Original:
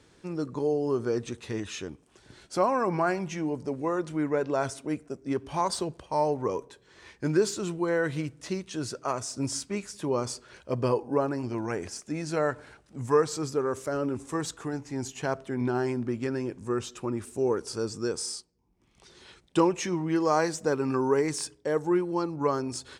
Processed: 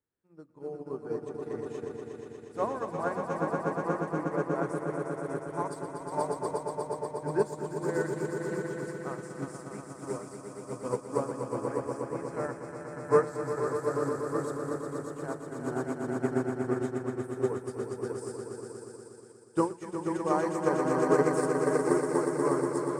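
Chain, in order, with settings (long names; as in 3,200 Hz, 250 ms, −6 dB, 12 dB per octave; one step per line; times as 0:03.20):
flat-topped bell 4,000 Hz −10.5 dB
mains-hum notches 60/120/180/240/300/360 Hz
echo that builds up and dies away 120 ms, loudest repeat 5, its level −4.5 dB
expander for the loud parts 2.5 to 1, over −38 dBFS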